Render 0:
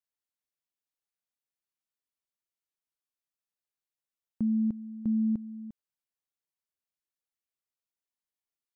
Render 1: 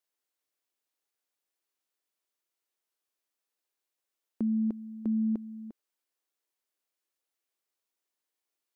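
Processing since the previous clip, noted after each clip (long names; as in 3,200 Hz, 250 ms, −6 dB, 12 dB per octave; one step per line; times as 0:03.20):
low shelf with overshoot 220 Hz −13.5 dB, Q 1.5
level +5.5 dB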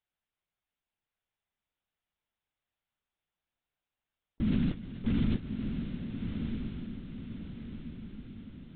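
noise that follows the level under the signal 12 dB
linear-prediction vocoder at 8 kHz whisper
feedback delay with all-pass diffusion 1,231 ms, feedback 51%, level −5 dB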